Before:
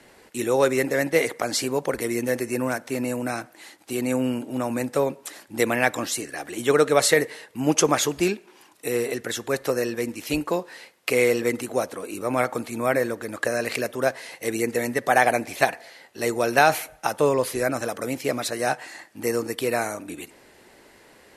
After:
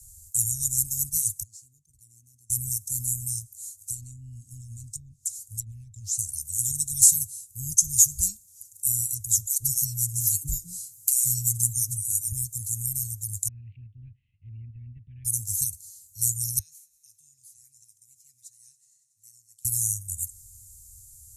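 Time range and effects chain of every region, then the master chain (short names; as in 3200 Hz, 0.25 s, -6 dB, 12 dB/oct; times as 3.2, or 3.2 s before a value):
1.43–2.5 sample leveller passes 1 + band-pass 730 Hz, Q 4.2
3.39–6.19 treble ducked by the level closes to 1400 Hz, closed at -17 dBFS + compressor 2:1, threshold -32 dBFS
9.45–12.32 comb 6.9 ms, depth 78% + dispersion lows, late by 0.149 s, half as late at 620 Hz + three-band squash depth 40%
13.48–15.25 steep low-pass 2800 Hz 72 dB/oct + low shelf 160 Hz -7.5 dB
16.59–19.65 band-pass 1800 Hz, Q 5.1 + multi-head echo 93 ms, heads first and second, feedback 72%, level -19.5 dB
whole clip: Chebyshev band-stop 100–6800 Hz, order 4; maximiser +17.5 dB; gain -3 dB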